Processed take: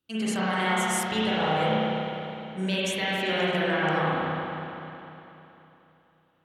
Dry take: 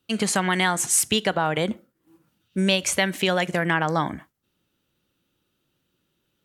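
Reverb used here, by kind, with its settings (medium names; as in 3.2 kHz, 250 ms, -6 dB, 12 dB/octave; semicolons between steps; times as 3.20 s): spring tank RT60 3.2 s, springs 32/50 ms, chirp 65 ms, DRR -9.5 dB; trim -12 dB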